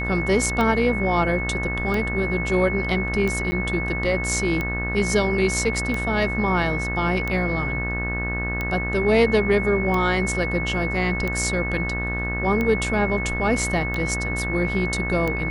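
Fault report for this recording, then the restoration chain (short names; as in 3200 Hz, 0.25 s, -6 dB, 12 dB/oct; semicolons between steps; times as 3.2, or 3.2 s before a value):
buzz 60 Hz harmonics 31 -28 dBFS
tick 45 rpm -13 dBFS
tone 2200 Hz -27 dBFS
3.51–3.52 gap 10 ms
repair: de-click; de-hum 60 Hz, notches 31; notch 2200 Hz, Q 30; interpolate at 3.51, 10 ms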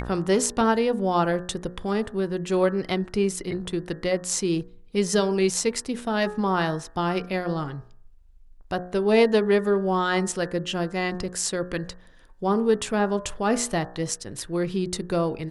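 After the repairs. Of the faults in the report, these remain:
none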